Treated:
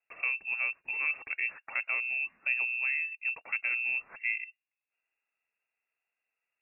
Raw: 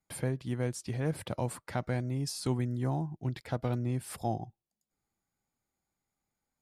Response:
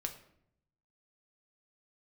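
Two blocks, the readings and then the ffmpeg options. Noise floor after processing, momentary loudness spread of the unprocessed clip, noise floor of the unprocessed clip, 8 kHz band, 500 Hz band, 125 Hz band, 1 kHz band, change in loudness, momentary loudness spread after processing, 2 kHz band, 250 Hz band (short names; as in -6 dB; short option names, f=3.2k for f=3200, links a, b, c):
under -85 dBFS, 4 LU, under -85 dBFS, under -35 dB, -20.0 dB, under -40 dB, -8.5 dB, +3.5 dB, 4 LU, +18.5 dB, under -30 dB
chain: -af "lowpass=f=2.4k:t=q:w=0.5098,lowpass=f=2.4k:t=q:w=0.6013,lowpass=f=2.4k:t=q:w=0.9,lowpass=f=2.4k:t=q:w=2.563,afreqshift=-2800"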